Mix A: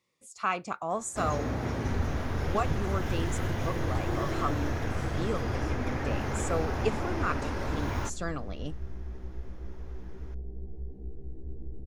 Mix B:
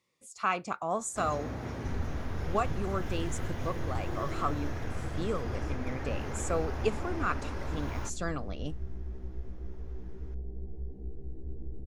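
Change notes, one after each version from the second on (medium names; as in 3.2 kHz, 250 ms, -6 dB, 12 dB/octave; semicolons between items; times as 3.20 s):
first sound -6.0 dB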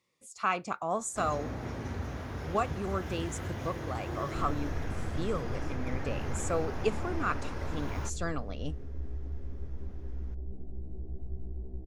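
second sound: entry +2.50 s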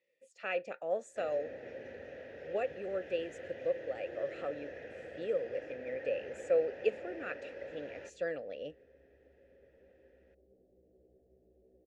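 speech +8.5 dB; first sound +5.5 dB; master: add vowel filter e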